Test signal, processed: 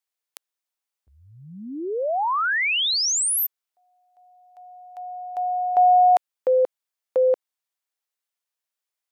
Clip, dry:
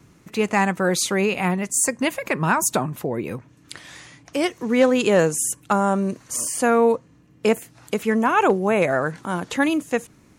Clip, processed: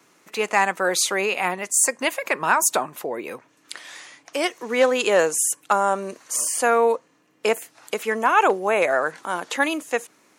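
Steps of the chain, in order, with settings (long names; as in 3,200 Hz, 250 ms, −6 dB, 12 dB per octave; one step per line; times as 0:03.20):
high-pass filter 490 Hz 12 dB per octave
level +2 dB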